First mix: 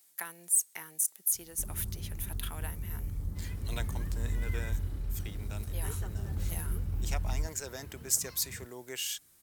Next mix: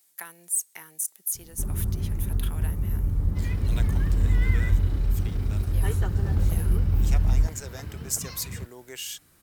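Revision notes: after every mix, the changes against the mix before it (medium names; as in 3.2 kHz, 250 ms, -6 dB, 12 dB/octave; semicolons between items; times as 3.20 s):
first sound +11.5 dB; second sound +11.0 dB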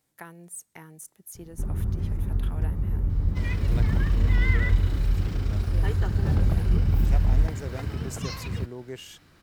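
speech: add tilt EQ -4.5 dB/octave; second sound +6.0 dB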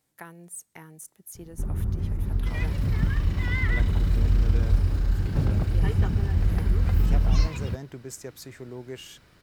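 second sound: entry -0.90 s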